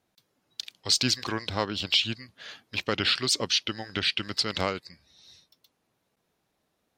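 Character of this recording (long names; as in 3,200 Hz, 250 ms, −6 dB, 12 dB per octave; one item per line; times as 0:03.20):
background noise floor −77 dBFS
spectral slope −2.5 dB per octave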